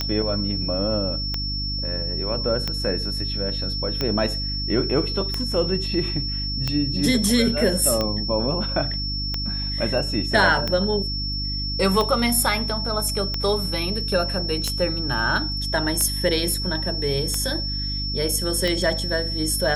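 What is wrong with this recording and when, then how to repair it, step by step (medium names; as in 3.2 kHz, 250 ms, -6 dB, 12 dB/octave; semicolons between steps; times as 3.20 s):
hum 50 Hz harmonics 6 -29 dBFS
tick 45 rpm -10 dBFS
whine 5.4 kHz -27 dBFS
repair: de-click; de-hum 50 Hz, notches 6; band-stop 5.4 kHz, Q 30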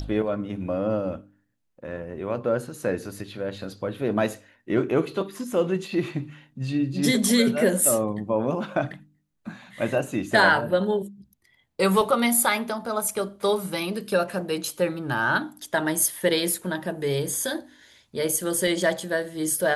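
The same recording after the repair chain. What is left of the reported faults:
nothing left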